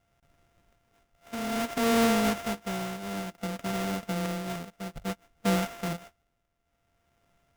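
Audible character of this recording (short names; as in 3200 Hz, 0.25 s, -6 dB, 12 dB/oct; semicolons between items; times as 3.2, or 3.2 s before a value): a buzz of ramps at a fixed pitch in blocks of 64 samples; tremolo triangle 0.58 Hz, depth 75%; aliases and images of a low sample rate 4300 Hz, jitter 20%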